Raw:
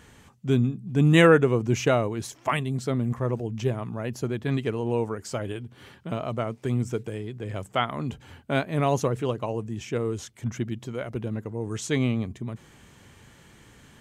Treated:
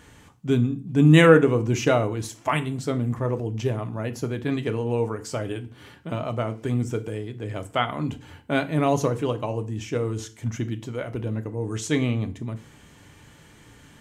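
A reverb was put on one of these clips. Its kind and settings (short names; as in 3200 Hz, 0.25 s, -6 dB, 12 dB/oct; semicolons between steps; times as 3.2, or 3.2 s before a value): FDN reverb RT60 0.39 s, low-frequency decay 1.2×, high-frequency decay 0.9×, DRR 8 dB; gain +1 dB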